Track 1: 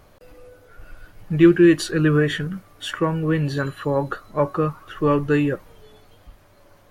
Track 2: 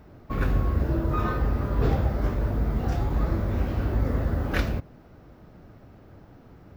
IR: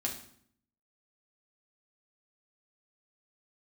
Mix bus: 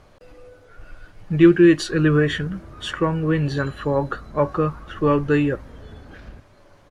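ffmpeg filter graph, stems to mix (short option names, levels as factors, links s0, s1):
-filter_complex "[0:a]volume=1.06[s0];[1:a]equalizer=f=1600:t=o:w=0.21:g=9,alimiter=limit=0.0841:level=0:latency=1:release=86,adelay=1600,volume=0.251[s1];[s0][s1]amix=inputs=2:normalize=0,lowpass=7700"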